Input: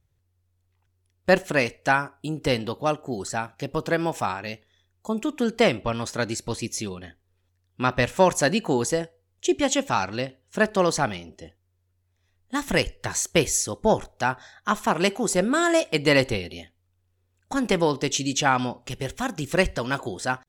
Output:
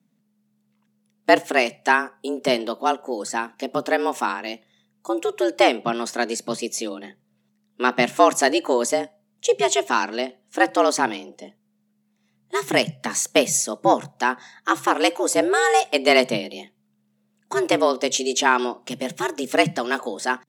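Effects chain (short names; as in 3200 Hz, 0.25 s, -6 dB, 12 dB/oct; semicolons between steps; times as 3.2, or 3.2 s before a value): added harmonics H 7 -42 dB, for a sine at -4.5 dBFS; frequency shift +120 Hz; gain +3 dB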